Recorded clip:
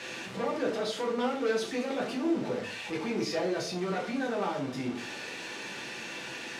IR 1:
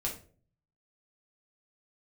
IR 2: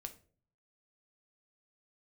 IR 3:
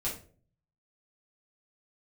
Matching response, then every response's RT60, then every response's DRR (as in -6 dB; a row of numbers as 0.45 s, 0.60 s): 1; 0.45 s, 0.45 s, 0.45 s; -2.5 dB, 6.5 dB, -7.5 dB